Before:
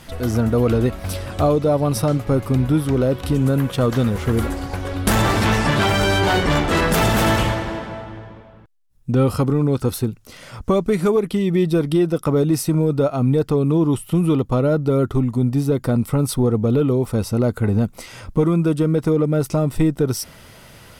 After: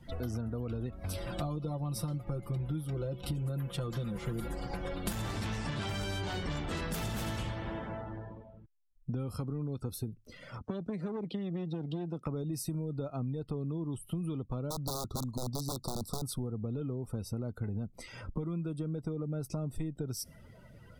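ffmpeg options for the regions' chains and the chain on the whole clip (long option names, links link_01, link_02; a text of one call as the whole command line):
ffmpeg -i in.wav -filter_complex "[0:a]asettb=1/sr,asplit=3[link_01][link_02][link_03];[link_01]atrim=end=1.174[link_04];[link_02]atrim=start=1.17:end=5.13,asetpts=PTS-STARTPTS,afade=type=in:duration=0.004:curve=qsin,afade=type=out:start_time=3.956:duration=0.004:curve=qsin,bandreject=frequency=6100:width=23,aecho=1:1:5.8:0.92,atrim=end_sample=174636[link_05];[link_03]atrim=start=5.126[link_06];[link_04][link_05]acrossfade=duration=0.004:curve1=hsin:curve2=qsin[link_07];[link_07][link_06]acrossfade=duration=0.004:curve1=qsin:curve2=hsin,asettb=1/sr,asplit=3[link_08][link_09][link_10];[link_08]atrim=end=10.584[link_11];[link_09]atrim=start=10.58:end=12.26,asetpts=PTS-STARTPTS,afade=type=in:duration=0.004:curve=qsin,afade=type=out:start_time=1.676:duration=0.004:curve=qsin,acrossover=split=330|3000[link_12][link_13][link_14];[link_13]acompressor=threshold=-28dB:ratio=2:attack=3.2:release=140:knee=2.83:detection=peak[link_15];[link_12][link_15][link_14]amix=inputs=3:normalize=0,aeval=exprs='clip(val(0),-1,0.0422)':channel_layout=same,highpass=110,lowpass=6600[link_16];[link_10]atrim=start=12.256[link_17];[link_11][link_16]acrossfade=duration=0.004:curve1=hsin:curve2=qsin[link_18];[link_18][link_17]acrossfade=duration=0.004:curve1=qsin:curve2=hsin,asettb=1/sr,asplit=3[link_19][link_20][link_21];[link_19]atrim=end=14.704[link_22];[link_20]atrim=start=14.7:end=16.22,asetpts=PTS-STARTPTS,afade=type=in:duration=0.004:curve=qsin,afade=type=out:start_time=1.516:duration=0.004:curve=qsin,equalizer=frequency=4400:width_type=o:width=1.6:gain=11,aeval=exprs='(mod(3.76*val(0)+1,2)-1)/3.76':channel_layout=same,asuperstop=centerf=2200:order=12:qfactor=0.93[link_23];[link_21]atrim=start=16.216[link_24];[link_22][link_23]acrossfade=duration=0.004:curve1=hsin:curve2=qsin[link_25];[link_25][link_24]acrossfade=duration=0.004:curve1=qsin:curve2=hsin,acrossover=split=230|3000[link_26][link_27][link_28];[link_27]acompressor=threshold=-35dB:ratio=1.5[link_29];[link_26][link_29][link_28]amix=inputs=3:normalize=0,afftdn=noise_reduction=19:noise_floor=-41,acompressor=threshold=-26dB:ratio=6,volume=-7dB" out.wav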